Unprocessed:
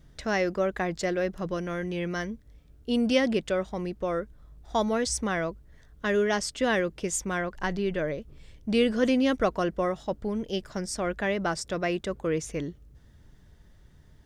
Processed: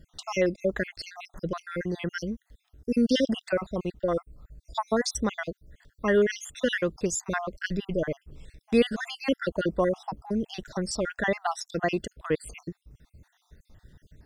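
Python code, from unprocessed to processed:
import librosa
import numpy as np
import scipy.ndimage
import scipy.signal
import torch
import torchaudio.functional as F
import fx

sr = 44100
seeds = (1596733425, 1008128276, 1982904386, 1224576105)

y = fx.spec_dropout(x, sr, seeds[0], share_pct=58)
y = fx.notch(y, sr, hz=2300.0, q=13.0)
y = y * 10.0 ** (3.5 / 20.0)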